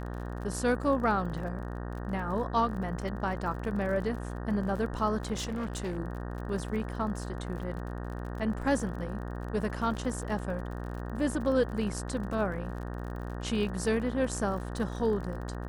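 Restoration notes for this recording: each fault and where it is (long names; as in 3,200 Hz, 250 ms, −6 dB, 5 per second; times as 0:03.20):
mains buzz 60 Hz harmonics 31 −37 dBFS
surface crackle 42 per second −39 dBFS
0:05.32–0:05.99: clipping −30 dBFS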